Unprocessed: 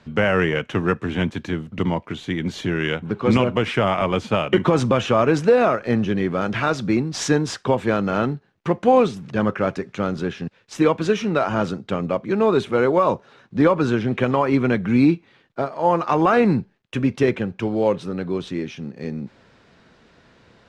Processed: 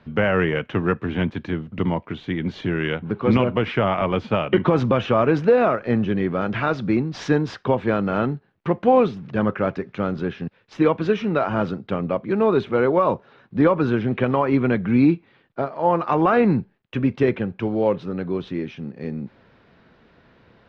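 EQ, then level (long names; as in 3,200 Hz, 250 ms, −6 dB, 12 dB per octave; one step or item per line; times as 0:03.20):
high-frequency loss of the air 280 metres
high-shelf EQ 5,000 Hz +5.5 dB
0.0 dB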